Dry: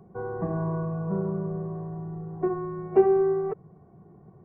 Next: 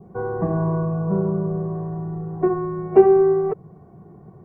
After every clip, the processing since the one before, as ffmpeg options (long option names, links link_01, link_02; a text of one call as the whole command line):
ffmpeg -i in.wav -af "adynamicequalizer=threshold=0.00447:dfrequency=1700:dqfactor=1.2:tfrequency=1700:tqfactor=1.2:attack=5:release=100:ratio=0.375:range=2:mode=cutabove:tftype=bell,volume=7dB" out.wav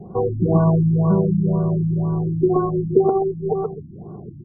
ffmpeg -i in.wav -filter_complex "[0:a]acompressor=threshold=-21dB:ratio=5,asplit=2[link_01][link_02];[link_02]aecho=0:1:128|256|384|512:0.631|0.164|0.0427|0.0111[link_03];[link_01][link_03]amix=inputs=2:normalize=0,afftfilt=real='re*lt(b*sr/1024,320*pow(1500/320,0.5+0.5*sin(2*PI*2*pts/sr)))':imag='im*lt(b*sr/1024,320*pow(1500/320,0.5+0.5*sin(2*PI*2*pts/sr)))':win_size=1024:overlap=0.75,volume=7.5dB" out.wav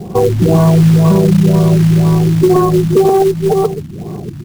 ffmpeg -i in.wav -filter_complex "[0:a]asplit=2[link_01][link_02];[link_02]acontrast=77,volume=2dB[link_03];[link_01][link_03]amix=inputs=2:normalize=0,acrusher=bits=5:mode=log:mix=0:aa=0.000001,alimiter=level_in=1.5dB:limit=-1dB:release=50:level=0:latency=1,volume=-1.5dB" out.wav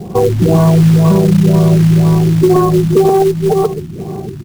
ffmpeg -i in.wav -af "aecho=1:1:1035:0.1" out.wav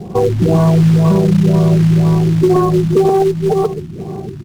ffmpeg -i in.wav -af "highshelf=frequency=9900:gain=-10.5,volume=-2dB" out.wav